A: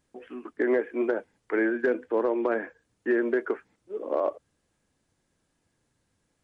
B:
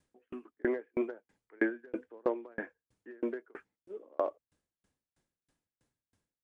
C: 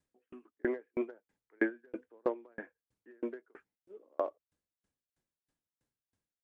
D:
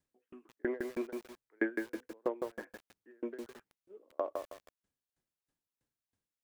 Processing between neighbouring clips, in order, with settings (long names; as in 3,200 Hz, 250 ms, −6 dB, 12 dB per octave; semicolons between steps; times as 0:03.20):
tremolo with a ramp in dB decaying 3.1 Hz, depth 38 dB
expander for the loud parts 1.5 to 1, over −40 dBFS
feedback echo at a low word length 159 ms, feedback 35%, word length 8 bits, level −4 dB; level −2 dB